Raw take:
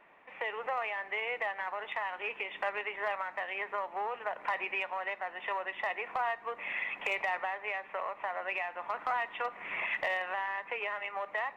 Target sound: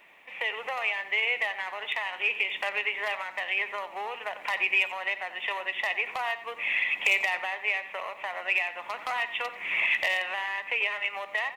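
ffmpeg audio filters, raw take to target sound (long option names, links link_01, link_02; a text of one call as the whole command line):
ffmpeg -i in.wav -filter_complex "[0:a]aexciter=amount=4.2:drive=5.8:freq=2100,asplit=2[link_01][link_02];[link_02]adelay=90,highpass=300,lowpass=3400,asoftclip=type=hard:threshold=-17.5dB,volume=-13dB[link_03];[link_01][link_03]amix=inputs=2:normalize=0" out.wav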